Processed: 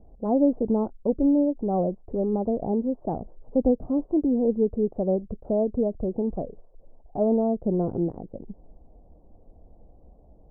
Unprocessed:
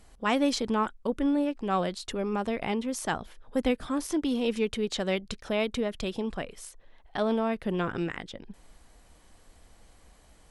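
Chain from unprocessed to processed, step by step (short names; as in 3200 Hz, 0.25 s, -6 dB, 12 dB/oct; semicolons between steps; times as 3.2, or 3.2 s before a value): steep low-pass 730 Hz 36 dB/oct; gain +5.5 dB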